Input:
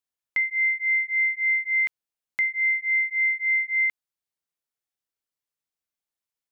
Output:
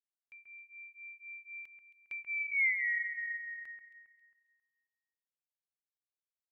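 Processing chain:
source passing by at 0:02.67, 40 m/s, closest 6.1 metres
delay that swaps between a low-pass and a high-pass 135 ms, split 2,300 Hz, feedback 58%, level −6.5 dB
level −6 dB

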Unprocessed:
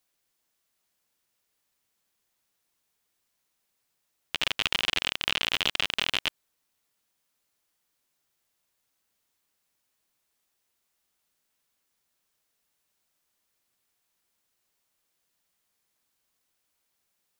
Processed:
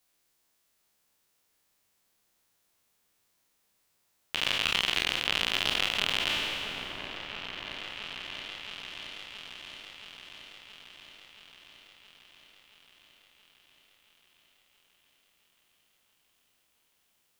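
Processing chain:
peak hold with a decay on every bin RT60 1.81 s
in parallel at +0.5 dB: downward compressor, threshold −37 dBFS, peak gain reduction 19 dB
on the sum: echo whose low-pass opens from repeat to repeat 674 ms, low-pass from 750 Hz, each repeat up 1 octave, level −6 dB
level −5.5 dB

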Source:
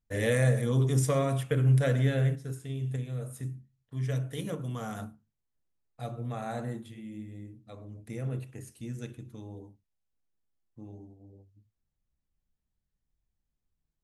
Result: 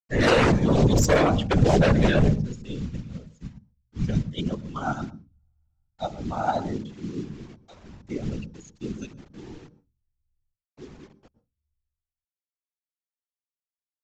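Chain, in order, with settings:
spectral dynamics exaggerated over time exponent 2
log-companded quantiser 6 bits
downsampling to 16,000 Hz
sine wavefolder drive 13 dB, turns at −15.5 dBFS
random phases in short frames
on a send at −19.5 dB: convolution reverb RT60 0.20 s, pre-delay 110 ms
0:02.82–0:04.76: on the sum: expander for the loud parts 1.5 to 1, over −43 dBFS

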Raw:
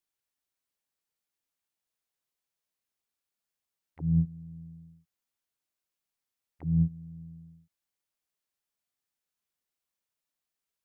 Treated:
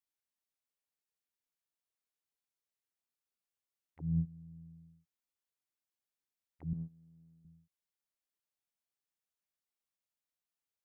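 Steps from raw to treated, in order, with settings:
0:06.73–0:07.45: high-pass filter 470 Hz 6 dB per octave
level −7.5 dB

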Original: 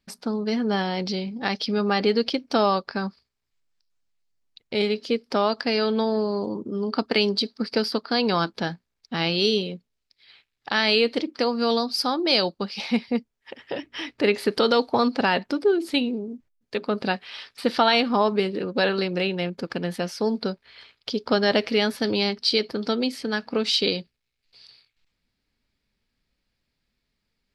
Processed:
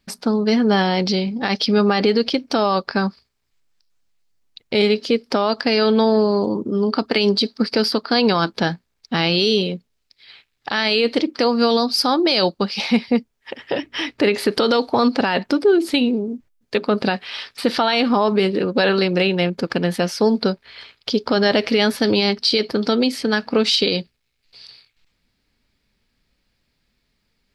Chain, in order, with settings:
brickwall limiter −15.5 dBFS, peak gain reduction 9 dB
level +8 dB

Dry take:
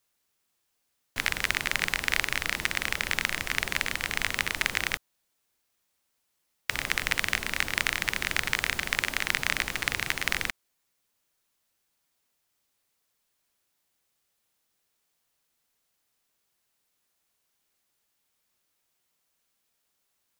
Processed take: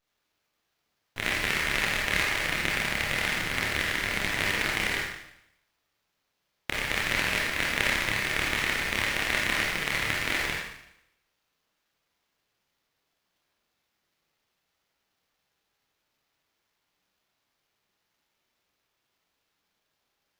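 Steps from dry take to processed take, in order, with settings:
multi-voice chorus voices 2, 0.56 Hz, delay 28 ms, depth 1.7 ms
four-comb reverb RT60 0.8 s, DRR −3 dB
windowed peak hold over 5 samples

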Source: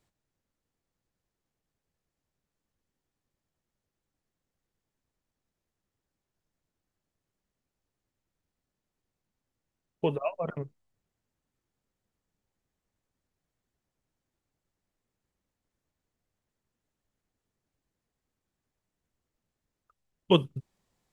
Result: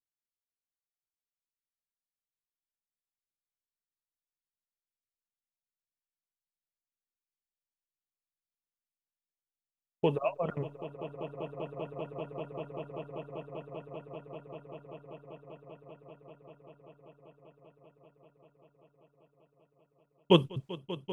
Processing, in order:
noise gate −58 dBFS, range −30 dB
echo that builds up and dies away 195 ms, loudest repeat 8, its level −14 dB

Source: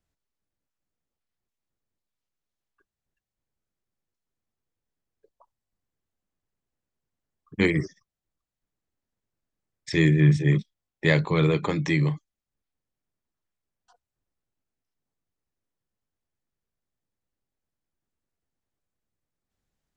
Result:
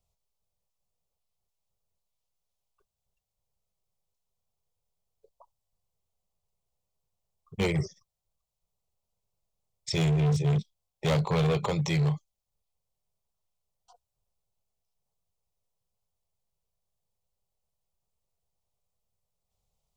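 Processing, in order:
phaser with its sweep stopped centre 690 Hz, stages 4
hard clipping −26 dBFS, distortion −8 dB
level +4 dB

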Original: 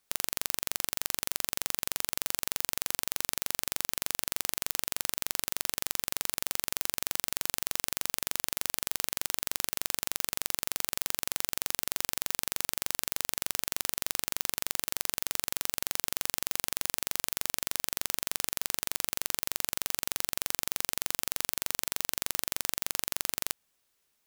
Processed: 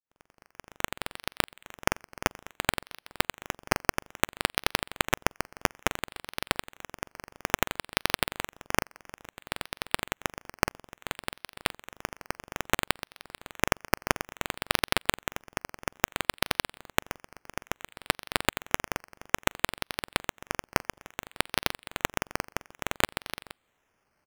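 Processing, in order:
fade in at the beginning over 1.25 s
pitch-shifted copies added −7 semitones −7 dB
sample-and-hold swept by an LFO 9×, swing 60% 0.59 Hz

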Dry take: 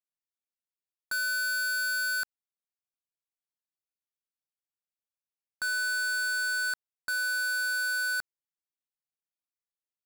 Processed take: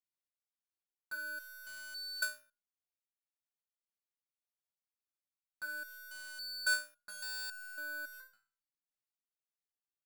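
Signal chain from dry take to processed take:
four-comb reverb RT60 0.41 s, combs from 25 ms, DRR 11.5 dB
step-sequenced resonator 3.6 Hz 60–520 Hz
level +2 dB

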